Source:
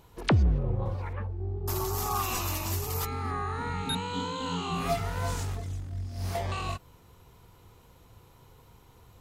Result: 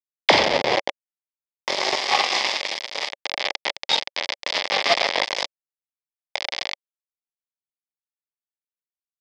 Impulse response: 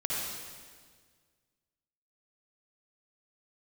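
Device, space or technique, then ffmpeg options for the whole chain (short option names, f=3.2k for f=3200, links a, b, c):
hand-held game console: -filter_complex "[0:a]asettb=1/sr,asplit=3[a][b][c];[a]atrim=end=2.364[d];[b]atrim=start=2.36:end=3.15,asetpts=PTS-STARTPTS,afade=t=in:d=0.004:c=qsin,afade=t=out:st=0.786:d=0.004:c=qsin,equalizer=f=2.1k:t=o:w=0.28:g=10.5[e];[c]atrim=start=3.146[f];[d][e]acrossfade=d=0.004:c1=hsin:c2=qsin[g];[g][f]acrossfade=d=0.004:c1=qsin:c2=hsin,aecho=1:1:40|90|152.5|230.6|328.3:0.631|0.398|0.251|0.158|0.1,acrusher=bits=3:mix=0:aa=0.000001,highpass=450,equalizer=f=570:t=q:w=4:g=7,equalizer=f=810:t=q:w=4:g=4,equalizer=f=1.4k:t=q:w=4:g=-9,equalizer=f=2.1k:t=q:w=4:g=8,equalizer=f=3.4k:t=q:w=4:g=6,equalizer=f=5k:t=q:w=4:g=9,lowpass=f=5.1k:w=0.5412,lowpass=f=5.1k:w=1.3066,volume=7dB"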